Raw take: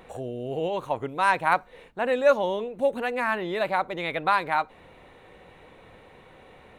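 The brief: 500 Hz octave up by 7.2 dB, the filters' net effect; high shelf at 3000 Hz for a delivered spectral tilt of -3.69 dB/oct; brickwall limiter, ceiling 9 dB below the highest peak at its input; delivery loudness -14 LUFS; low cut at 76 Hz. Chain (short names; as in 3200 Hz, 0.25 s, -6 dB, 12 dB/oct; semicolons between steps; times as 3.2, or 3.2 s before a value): HPF 76 Hz; bell 500 Hz +8.5 dB; high shelf 3000 Hz -4.5 dB; gain +10 dB; limiter -2.5 dBFS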